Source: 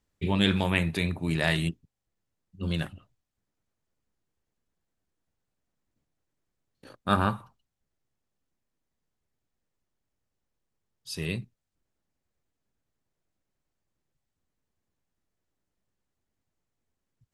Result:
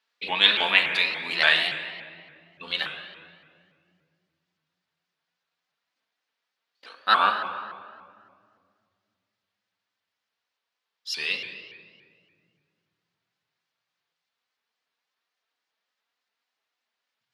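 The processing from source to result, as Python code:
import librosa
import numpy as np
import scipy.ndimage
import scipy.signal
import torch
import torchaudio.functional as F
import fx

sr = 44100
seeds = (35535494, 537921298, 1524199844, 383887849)

y = scipy.signal.sosfilt(scipy.signal.butter(2, 1000.0, 'highpass', fs=sr, output='sos'), x)
y = fx.high_shelf_res(y, sr, hz=6100.0, db=-12.5, q=1.5)
y = fx.room_shoebox(y, sr, seeds[0], volume_m3=4000.0, walls='mixed', distance_m=1.8)
y = fx.vibrato_shape(y, sr, shape='saw_up', rate_hz=3.5, depth_cents=160.0)
y = y * 10.0 ** (7.0 / 20.0)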